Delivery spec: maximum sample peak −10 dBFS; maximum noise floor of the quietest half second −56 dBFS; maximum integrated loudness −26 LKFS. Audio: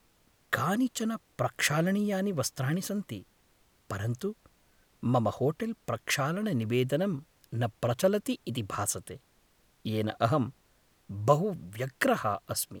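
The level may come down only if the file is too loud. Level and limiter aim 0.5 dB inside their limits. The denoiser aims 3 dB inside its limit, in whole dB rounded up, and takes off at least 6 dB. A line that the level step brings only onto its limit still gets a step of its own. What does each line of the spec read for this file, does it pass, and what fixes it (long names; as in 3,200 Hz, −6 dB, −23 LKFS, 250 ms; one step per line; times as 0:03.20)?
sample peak −8.5 dBFS: out of spec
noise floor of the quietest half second −66 dBFS: in spec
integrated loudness −30.5 LKFS: in spec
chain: brickwall limiter −10.5 dBFS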